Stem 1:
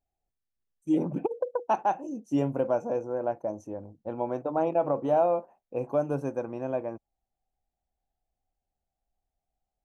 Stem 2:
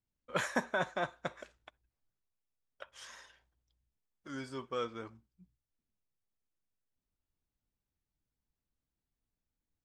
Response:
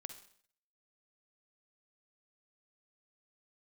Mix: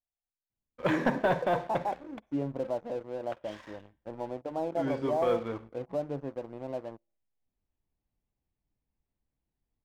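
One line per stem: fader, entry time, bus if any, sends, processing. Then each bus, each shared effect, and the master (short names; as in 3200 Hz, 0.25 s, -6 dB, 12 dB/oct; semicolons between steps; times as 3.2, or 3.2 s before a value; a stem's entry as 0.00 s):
-14.0 dB, 0.00 s, send -16.5 dB, dry
+1.5 dB, 0.50 s, send -5 dB, de-hum 84.8 Hz, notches 6; AGC gain up to 5 dB; auto duck -10 dB, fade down 1.50 s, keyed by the first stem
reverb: on, RT60 0.55 s, pre-delay 44 ms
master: LPF 2000 Hz 12 dB/oct; bell 1400 Hz -9 dB 0.53 oct; sample leveller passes 2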